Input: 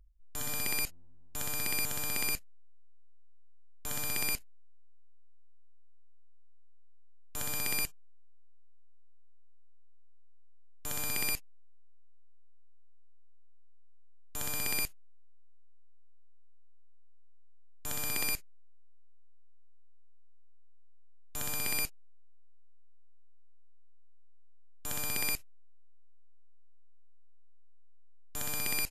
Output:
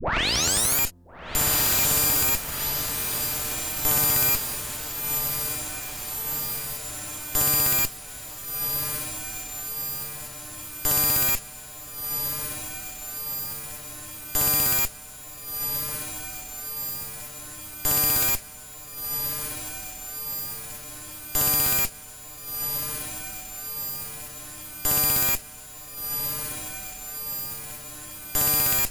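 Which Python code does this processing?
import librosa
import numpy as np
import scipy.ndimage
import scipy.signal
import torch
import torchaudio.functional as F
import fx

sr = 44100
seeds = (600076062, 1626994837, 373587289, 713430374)

y = fx.tape_start_head(x, sr, length_s=0.79)
y = fx.high_shelf(y, sr, hz=4600.0, db=4.5)
y = fx.fold_sine(y, sr, drive_db=10, ceiling_db=-16.5)
y = fx.echo_diffused(y, sr, ms=1389, feedback_pct=68, wet_db=-5.0)
y = fx.cheby_harmonics(y, sr, harmonics=(6,), levels_db=(-26,), full_scale_db=-11.5)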